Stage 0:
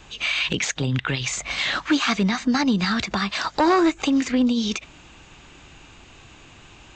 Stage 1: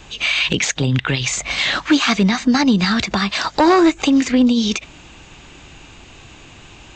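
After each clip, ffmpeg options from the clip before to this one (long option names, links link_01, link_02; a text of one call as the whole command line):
ffmpeg -i in.wav -af "equalizer=frequency=1300:width=1.5:gain=-2.5,volume=6dB" out.wav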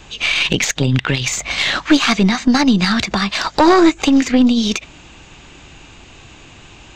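ffmpeg -i in.wav -af "aeval=exprs='0.531*(cos(1*acos(clip(val(0)/0.531,-1,1)))-cos(1*PI/2))+0.0841*(cos(2*acos(clip(val(0)/0.531,-1,1)))-cos(2*PI/2))+0.0422*(cos(3*acos(clip(val(0)/0.531,-1,1)))-cos(3*PI/2))':channel_layout=same,volume=3dB" out.wav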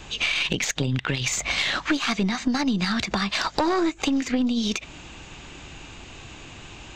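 ffmpeg -i in.wav -af "acompressor=threshold=-21dB:ratio=4,volume=-1dB" out.wav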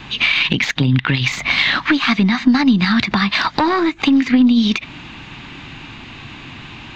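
ffmpeg -i in.wav -af "equalizer=frequency=125:width_type=o:width=1:gain=9,equalizer=frequency=250:width_type=o:width=1:gain=11,equalizer=frequency=500:width_type=o:width=1:gain=-3,equalizer=frequency=1000:width_type=o:width=1:gain=8,equalizer=frequency=2000:width_type=o:width=1:gain=9,equalizer=frequency=4000:width_type=o:width=1:gain=9,equalizer=frequency=8000:width_type=o:width=1:gain=-11,volume=-1dB" out.wav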